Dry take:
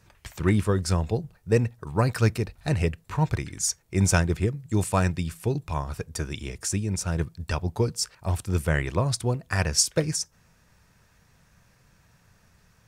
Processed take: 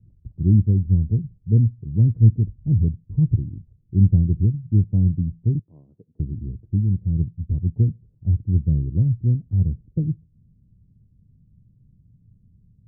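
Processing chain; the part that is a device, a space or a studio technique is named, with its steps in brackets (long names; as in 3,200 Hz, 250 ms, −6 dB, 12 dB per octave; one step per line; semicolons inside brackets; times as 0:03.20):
0:05.59–0:06.20: high-pass filter 520 Hz 12 dB per octave
the neighbour's flat through the wall (low-pass filter 260 Hz 24 dB per octave; parametric band 110 Hz +5 dB 0.5 octaves)
level +5 dB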